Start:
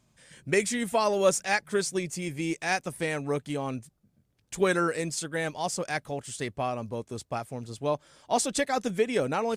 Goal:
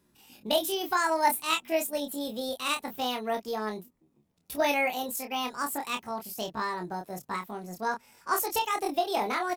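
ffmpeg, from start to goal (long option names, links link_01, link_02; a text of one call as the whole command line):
ffmpeg -i in.wav -filter_complex "[0:a]asetrate=70004,aresample=44100,atempo=0.629961,asplit=2[link_01][link_02];[link_02]adelay=28,volume=-6dB[link_03];[link_01][link_03]amix=inputs=2:normalize=0,volume=-2dB" out.wav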